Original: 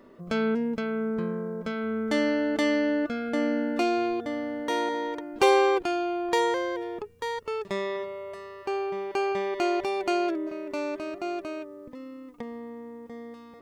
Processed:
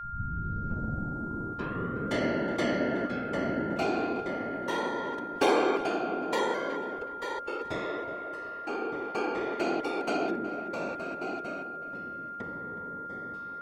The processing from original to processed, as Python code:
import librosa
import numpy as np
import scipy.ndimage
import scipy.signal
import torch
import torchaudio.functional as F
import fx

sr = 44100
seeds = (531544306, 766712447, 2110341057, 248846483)

p1 = fx.tape_start_head(x, sr, length_s=2.14)
p2 = fx.whisperise(p1, sr, seeds[0])
p3 = p2 + 10.0 ** (-32.0 / 20.0) * np.sin(2.0 * np.pi * 1400.0 * np.arange(len(p2)) / sr)
p4 = p3 + fx.echo_filtered(p3, sr, ms=369, feedback_pct=40, hz=2000.0, wet_db=-11.5, dry=0)
y = F.gain(torch.from_numpy(p4), -4.5).numpy()